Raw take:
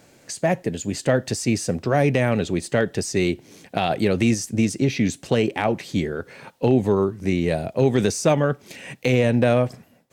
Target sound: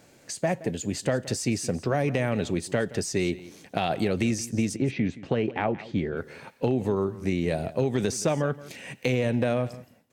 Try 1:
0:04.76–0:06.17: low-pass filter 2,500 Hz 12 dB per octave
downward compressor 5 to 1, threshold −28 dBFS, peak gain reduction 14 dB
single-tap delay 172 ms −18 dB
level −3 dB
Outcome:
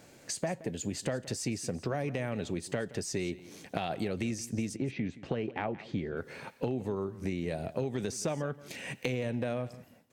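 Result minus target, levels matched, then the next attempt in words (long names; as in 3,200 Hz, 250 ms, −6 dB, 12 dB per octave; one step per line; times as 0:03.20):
downward compressor: peak gain reduction +8.5 dB
0:04.76–0:06.17: low-pass filter 2,500 Hz 12 dB per octave
downward compressor 5 to 1, threshold −17.5 dBFS, peak gain reduction 5.5 dB
single-tap delay 172 ms −18 dB
level −3 dB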